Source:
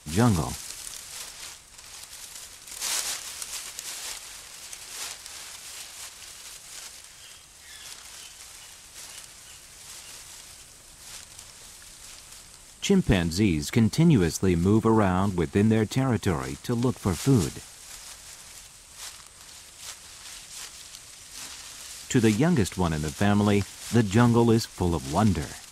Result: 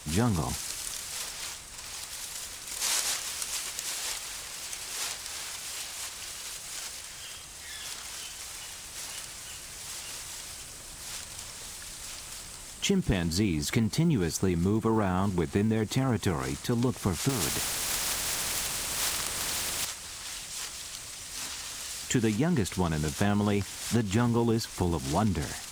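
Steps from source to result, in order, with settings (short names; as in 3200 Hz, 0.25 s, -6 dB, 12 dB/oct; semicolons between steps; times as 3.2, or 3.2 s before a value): G.711 law mismatch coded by mu; compressor 4:1, threshold -23 dBFS, peak gain reduction 7.5 dB; 17.29–19.85 spectral compressor 2:1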